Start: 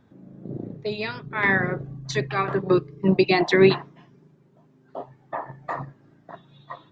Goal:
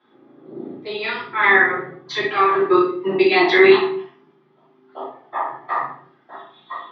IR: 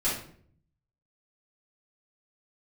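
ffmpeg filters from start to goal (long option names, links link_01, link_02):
-filter_complex "[0:a]highpass=380,equalizer=frequency=390:width_type=q:width=4:gain=5,equalizer=frequency=590:width_type=q:width=4:gain=-7,equalizer=frequency=840:width_type=q:width=4:gain=7,equalizer=frequency=1200:width_type=q:width=4:gain=9,equalizer=frequency=2000:width_type=q:width=4:gain=6,equalizer=frequency=3300:width_type=q:width=4:gain=10,lowpass=frequency=4800:width=0.5412,lowpass=frequency=4800:width=1.3066[link_01];[1:a]atrim=start_sample=2205,afade=type=out:start_time=0.44:duration=0.01,atrim=end_sample=19845[link_02];[link_01][link_02]afir=irnorm=-1:irlink=0,volume=-6dB"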